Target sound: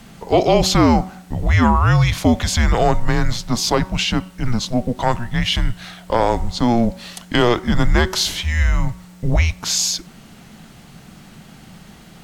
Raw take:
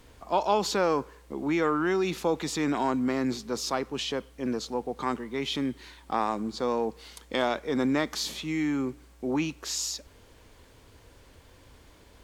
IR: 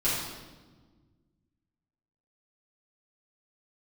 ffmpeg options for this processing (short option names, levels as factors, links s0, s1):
-af "afreqshift=-240,bandreject=f=187.3:t=h:w=4,bandreject=f=374.6:t=h:w=4,bandreject=f=561.9:t=h:w=4,bandreject=f=749.2:t=h:w=4,bandreject=f=936.5:t=h:w=4,bandreject=f=1123.8:t=h:w=4,bandreject=f=1311.1:t=h:w=4,bandreject=f=1498.4:t=h:w=4,apsyclip=7.5,volume=0.562"